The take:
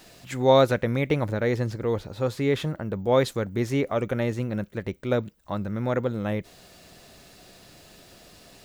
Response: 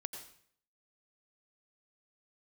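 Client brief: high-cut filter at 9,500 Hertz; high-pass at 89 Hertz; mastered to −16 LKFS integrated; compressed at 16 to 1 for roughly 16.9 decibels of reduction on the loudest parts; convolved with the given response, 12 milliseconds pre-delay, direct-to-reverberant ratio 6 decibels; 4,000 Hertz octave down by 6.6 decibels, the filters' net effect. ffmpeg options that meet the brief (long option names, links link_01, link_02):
-filter_complex "[0:a]highpass=89,lowpass=9500,equalizer=frequency=4000:width_type=o:gain=-7.5,acompressor=threshold=-29dB:ratio=16,asplit=2[link_01][link_02];[1:a]atrim=start_sample=2205,adelay=12[link_03];[link_02][link_03]afir=irnorm=-1:irlink=0,volume=-4dB[link_04];[link_01][link_04]amix=inputs=2:normalize=0,volume=18.5dB"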